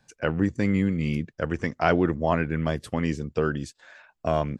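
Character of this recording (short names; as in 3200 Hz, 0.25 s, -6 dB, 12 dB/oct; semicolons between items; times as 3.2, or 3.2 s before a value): noise floor -74 dBFS; spectral tilt -5.0 dB/oct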